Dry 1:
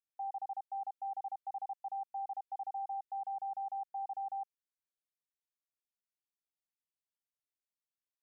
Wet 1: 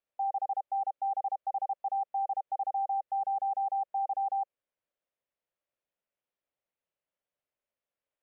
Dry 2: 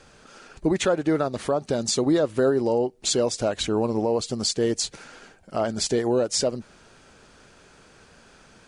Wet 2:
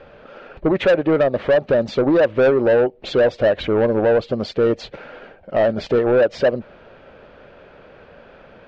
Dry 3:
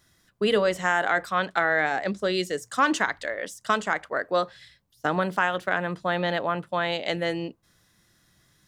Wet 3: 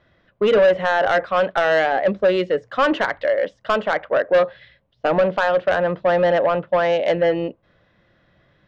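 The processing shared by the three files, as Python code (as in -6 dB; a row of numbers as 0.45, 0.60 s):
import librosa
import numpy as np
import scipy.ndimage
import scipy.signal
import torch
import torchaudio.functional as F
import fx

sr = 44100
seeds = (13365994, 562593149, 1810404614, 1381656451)

y = scipy.signal.sosfilt(scipy.signal.butter(4, 3100.0, 'lowpass', fs=sr, output='sos'), x)
y = fx.peak_eq(y, sr, hz=560.0, db=11.5, octaves=0.6)
y = 10.0 ** (-15.5 / 20.0) * np.tanh(y / 10.0 ** (-15.5 / 20.0))
y = y * librosa.db_to_amplitude(5.0)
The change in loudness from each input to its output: +8.5, +6.0, +6.5 LU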